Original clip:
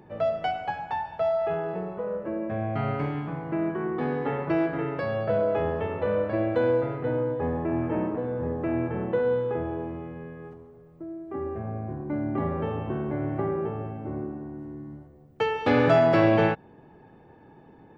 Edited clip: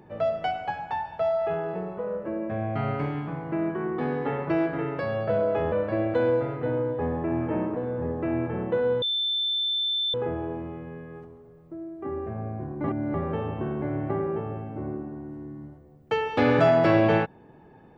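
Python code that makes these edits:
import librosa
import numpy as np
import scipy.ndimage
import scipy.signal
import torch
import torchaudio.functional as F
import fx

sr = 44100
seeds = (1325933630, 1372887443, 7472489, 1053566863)

y = fx.edit(x, sr, fx.cut(start_s=5.72, length_s=0.41),
    fx.insert_tone(at_s=9.43, length_s=1.12, hz=3540.0, db=-23.5),
    fx.reverse_span(start_s=12.13, length_s=0.3), tone=tone)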